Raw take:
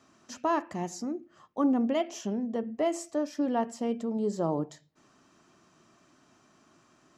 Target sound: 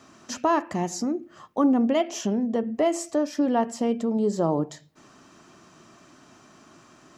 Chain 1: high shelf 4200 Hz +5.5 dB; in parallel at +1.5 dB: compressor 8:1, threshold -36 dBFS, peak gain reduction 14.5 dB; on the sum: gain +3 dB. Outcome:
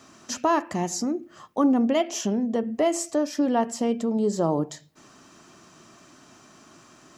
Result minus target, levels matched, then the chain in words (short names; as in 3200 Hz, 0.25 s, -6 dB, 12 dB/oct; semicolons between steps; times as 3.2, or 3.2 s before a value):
8000 Hz band +3.5 dB
in parallel at +1.5 dB: compressor 8:1, threshold -36 dBFS, peak gain reduction 14.5 dB; on the sum: gain +3 dB